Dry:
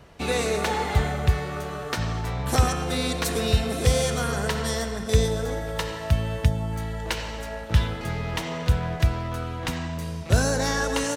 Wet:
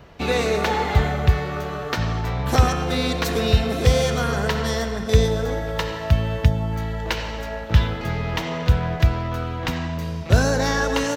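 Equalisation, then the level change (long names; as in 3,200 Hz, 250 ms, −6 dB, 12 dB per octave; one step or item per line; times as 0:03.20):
parametric band 9,300 Hz −13 dB 0.75 octaves
+4.0 dB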